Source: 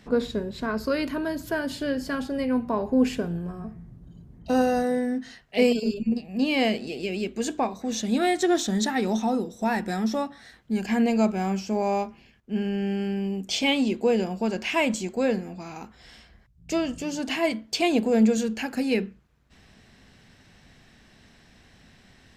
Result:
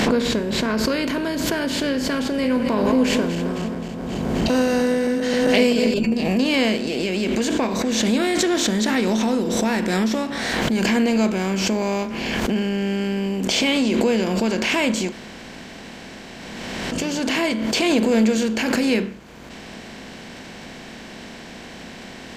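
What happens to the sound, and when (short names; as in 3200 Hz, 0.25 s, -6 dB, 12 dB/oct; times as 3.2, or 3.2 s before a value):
2.3–5.94 regenerating reverse delay 0.132 s, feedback 67%, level -12 dB
15.12–16.92 room tone
whole clip: per-bin compression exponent 0.6; dynamic EQ 760 Hz, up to -7 dB, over -40 dBFS, Q 4.3; backwards sustainer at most 22 dB/s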